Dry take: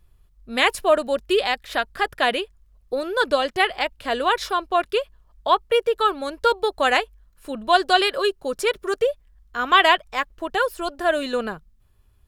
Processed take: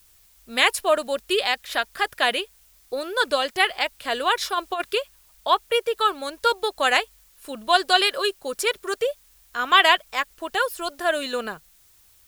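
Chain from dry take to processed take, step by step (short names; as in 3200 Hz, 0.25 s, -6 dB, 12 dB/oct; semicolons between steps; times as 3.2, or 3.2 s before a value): added noise white -62 dBFS; tilt +2 dB/oct; 4.53–4.96 negative-ratio compressor -21 dBFS, ratio -0.5; gain -1.5 dB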